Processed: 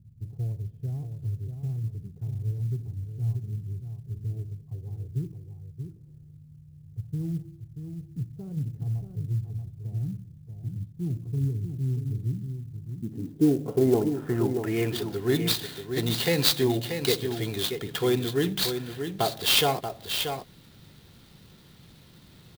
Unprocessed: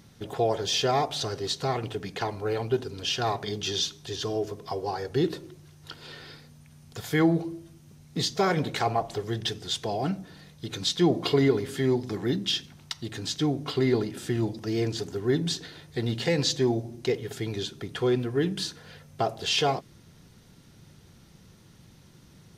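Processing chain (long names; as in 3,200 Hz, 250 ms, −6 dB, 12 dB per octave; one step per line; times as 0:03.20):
low-pass filter sweep 110 Hz → 4,100 Hz, 0:12.61–0:15.14
single-tap delay 633 ms −7.5 dB
converter with an unsteady clock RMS 0.028 ms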